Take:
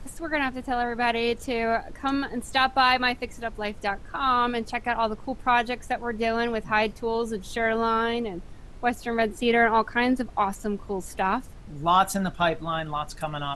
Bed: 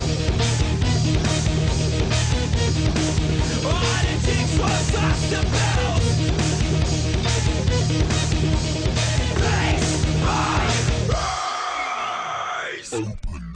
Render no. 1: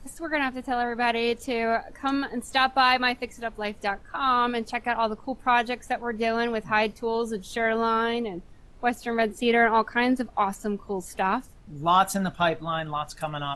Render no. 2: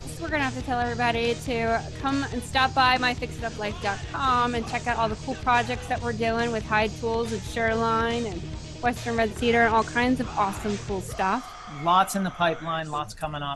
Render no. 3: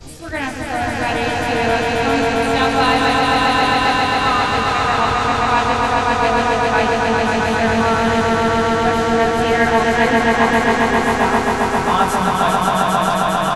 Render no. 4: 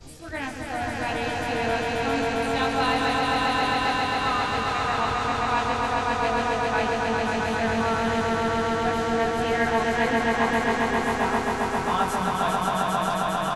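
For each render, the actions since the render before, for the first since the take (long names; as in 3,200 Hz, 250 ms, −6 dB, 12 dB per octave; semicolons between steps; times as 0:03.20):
noise reduction from a noise print 7 dB
mix in bed −15.5 dB
double-tracking delay 22 ms −2 dB; echo that builds up and dies away 134 ms, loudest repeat 5, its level −3 dB
level −8.5 dB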